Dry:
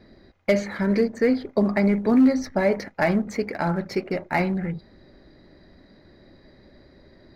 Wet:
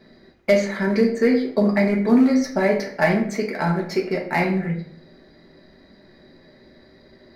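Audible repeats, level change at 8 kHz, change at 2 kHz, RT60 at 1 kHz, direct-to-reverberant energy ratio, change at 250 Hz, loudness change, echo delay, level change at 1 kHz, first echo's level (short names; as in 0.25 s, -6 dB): none, n/a, +4.0 dB, 0.50 s, 0.5 dB, +2.0 dB, +2.5 dB, none, +2.5 dB, none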